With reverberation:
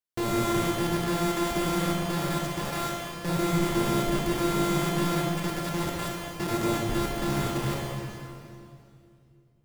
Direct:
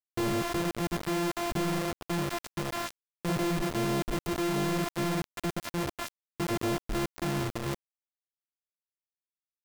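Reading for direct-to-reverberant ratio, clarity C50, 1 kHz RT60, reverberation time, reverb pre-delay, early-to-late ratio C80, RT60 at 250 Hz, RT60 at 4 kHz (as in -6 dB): -2.0 dB, -0.5 dB, 2.4 s, 2.5 s, 24 ms, 0.5 dB, 3.0 s, 2.3 s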